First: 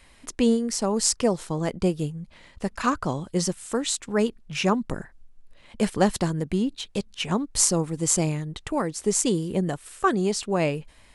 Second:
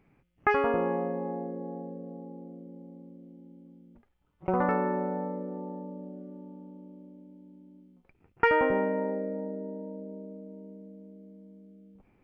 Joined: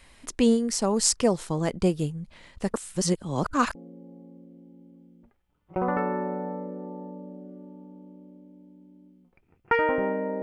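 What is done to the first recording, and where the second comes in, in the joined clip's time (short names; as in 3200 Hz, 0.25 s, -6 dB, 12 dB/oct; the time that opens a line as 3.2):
first
2.74–3.75 reverse
3.75 switch to second from 2.47 s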